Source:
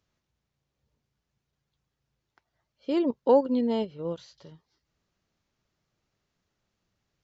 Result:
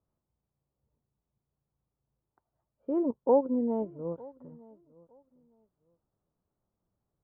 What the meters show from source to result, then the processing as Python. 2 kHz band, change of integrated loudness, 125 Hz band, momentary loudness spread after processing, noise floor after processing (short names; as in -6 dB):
under -20 dB, -3.0 dB, -3.0 dB, 18 LU, under -85 dBFS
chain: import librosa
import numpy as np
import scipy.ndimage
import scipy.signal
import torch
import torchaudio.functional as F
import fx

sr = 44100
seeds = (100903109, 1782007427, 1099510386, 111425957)

y = scipy.signal.sosfilt(scipy.signal.butter(4, 1100.0, 'lowpass', fs=sr, output='sos'), x)
y = fx.echo_feedback(y, sr, ms=909, feedback_pct=19, wet_db=-23.0)
y = y * librosa.db_to_amplitude(-3.0)